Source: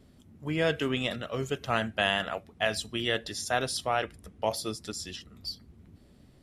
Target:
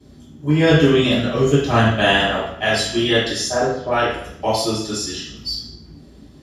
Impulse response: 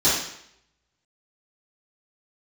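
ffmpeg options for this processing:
-filter_complex "[0:a]asettb=1/sr,asplit=3[link_01][link_02][link_03];[link_01]atrim=end=0.694[link_04];[link_02]atrim=start=0.69:end=2.51,asetpts=PTS-STARTPTS,afade=type=in:duration=0.004:curve=qsin,afade=type=out:start_time=1.816:duration=0.004:curve=qsin,lowshelf=frequency=230:gain=8[link_05];[link_03]atrim=start=2.506[link_06];[link_04][link_05]acrossfade=duration=0.004:curve1=hsin:curve2=qsin[link_07];[link_07][link_06]acrossfade=duration=0.004:curve1=qsin:curve2=hsin,asplit=3[link_08][link_09][link_10];[link_08]afade=type=out:start_time=3.46:duration=0.02[link_11];[link_09]lowpass=1100,afade=type=in:start_time=3.46:duration=0.02,afade=type=out:start_time=3.9:duration=0.02[link_12];[link_10]afade=type=in:start_time=3.9:duration=0.02[link_13];[link_11][link_12][link_13]amix=inputs=3:normalize=0[link_14];[1:a]atrim=start_sample=2205[link_15];[link_14][link_15]afir=irnorm=-1:irlink=0,volume=-6dB"

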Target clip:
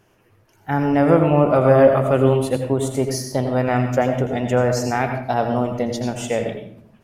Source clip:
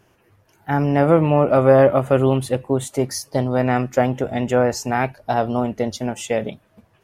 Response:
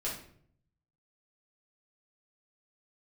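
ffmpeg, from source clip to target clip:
-filter_complex "[0:a]asplit=2[link_01][link_02];[1:a]atrim=start_sample=2205,adelay=81[link_03];[link_02][link_03]afir=irnorm=-1:irlink=0,volume=-8.5dB[link_04];[link_01][link_04]amix=inputs=2:normalize=0,volume=-1dB"

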